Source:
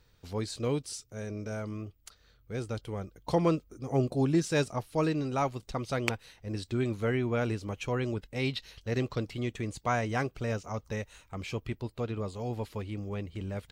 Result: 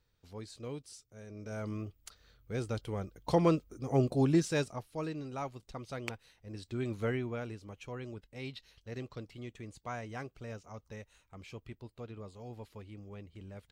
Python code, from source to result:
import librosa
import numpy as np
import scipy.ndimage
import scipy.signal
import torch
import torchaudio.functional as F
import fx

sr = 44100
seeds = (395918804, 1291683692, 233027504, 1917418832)

y = fx.gain(x, sr, db=fx.line((1.26, -11.5), (1.68, -0.5), (4.36, -0.5), (4.91, -9.5), (6.52, -9.5), (7.05, -3.0), (7.49, -11.5)))